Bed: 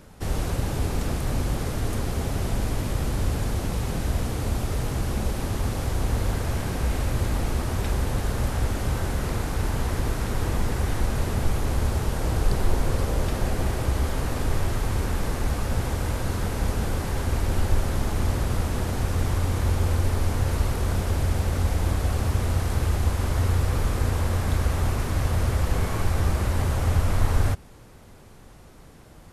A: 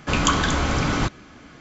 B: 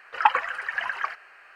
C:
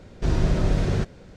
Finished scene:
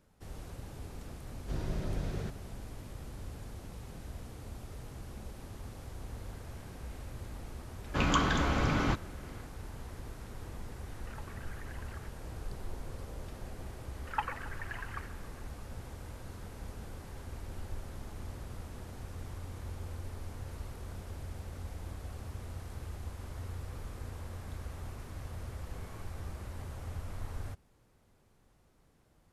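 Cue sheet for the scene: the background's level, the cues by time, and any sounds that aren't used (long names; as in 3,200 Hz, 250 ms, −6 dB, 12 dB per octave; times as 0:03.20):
bed −19 dB
0:01.26: mix in C −14 dB
0:07.87: mix in A −7 dB + high-shelf EQ 5,400 Hz −12 dB
0:10.93: mix in B −16 dB + downward compressor, threshold −33 dBFS
0:13.93: mix in B −15 dB + feedback echo with a band-pass in the loop 137 ms, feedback 75%, band-pass 1,200 Hz, level −16 dB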